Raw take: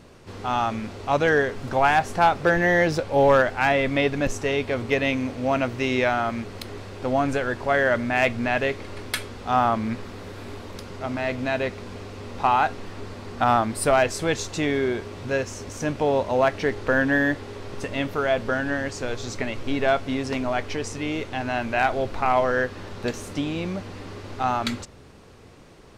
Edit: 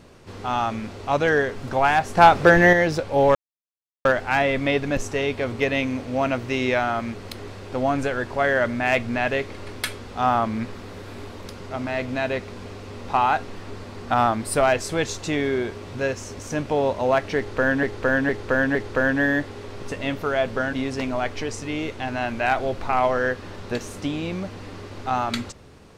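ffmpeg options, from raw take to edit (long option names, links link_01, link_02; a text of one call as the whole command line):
ffmpeg -i in.wav -filter_complex "[0:a]asplit=8[link_01][link_02][link_03][link_04][link_05][link_06][link_07][link_08];[link_01]atrim=end=2.172[link_09];[link_02]atrim=start=2.168:end=2.732,asetpts=PTS-STARTPTS,volume=6dB[link_10];[link_03]atrim=start=2.728:end=3.35,asetpts=PTS-STARTPTS,afade=type=out:start_time=0.618:duration=0.004:curve=hsin,apad=pad_dur=0.7[link_11];[link_04]atrim=start=3.35:end=17.132,asetpts=PTS-STARTPTS,afade=type=in:duration=0.004:curve=hsin[link_12];[link_05]atrim=start=16.668:end=17.132[link_13];[link_06]atrim=start=16.668:end=17.132[link_14];[link_07]atrim=start=16.668:end=18.652[link_15];[link_08]atrim=start=20.058[link_16];[link_09][link_10]acrossfade=duration=0.004:curve1=hsin:curve2=hsin[link_17];[link_11][link_12]concat=n=2:v=0:a=1[link_18];[link_17][link_18]acrossfade=duration=0.004:curve1=hsin:curve2=hsin[link_19];[link_19][link_13]acrossfade=duration=0.004:curve1=hsin:curve2=hsin[link_20];[link_20][link_14]acrossfade=duration=0.004:curve1=hsin:curve2=hsin[link_21];[link_21][link_15]acrossfade=duration=0.004:curve1=hsin:curve2=hsin[link_22];[link_22][link_16]acrossfade=duration=0.004:curve1=hsin:curve2=hsin" out.wav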